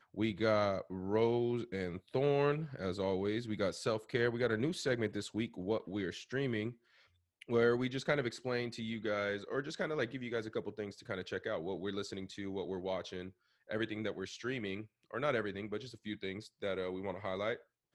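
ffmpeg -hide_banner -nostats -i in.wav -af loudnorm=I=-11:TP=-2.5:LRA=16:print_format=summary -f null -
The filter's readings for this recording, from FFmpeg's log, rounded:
Input Integrated:    -37.3 LUFS
Input True Peak:     -17.3 dBTP
Input LRA:             5.3 LU
Input Threshold:     -47.5 LUFS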